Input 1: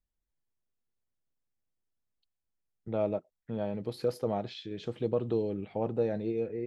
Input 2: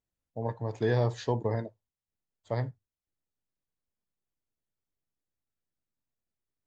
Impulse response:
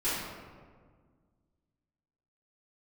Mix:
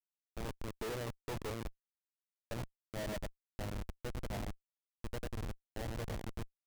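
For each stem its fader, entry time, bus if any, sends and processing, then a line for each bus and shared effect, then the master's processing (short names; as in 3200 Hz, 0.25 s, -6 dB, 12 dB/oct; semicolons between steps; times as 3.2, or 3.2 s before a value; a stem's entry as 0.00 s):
-5.5 dB, 0.00 s, no send, echo send -4 dB, HPF 53 Hz 12 dB/oct; low shelf 390 Hz -5.5 dB; comb 1.3 ms, depth 52%
-1.5 dB, 0.00 s, no send, no echo send, HPF 210 Hz 12 dB/oct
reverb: off
echo: feedback echo 97 ms, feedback 27%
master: LPF 1400 Hz 6 dB/oct; Schmitt trigger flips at -36 dBFS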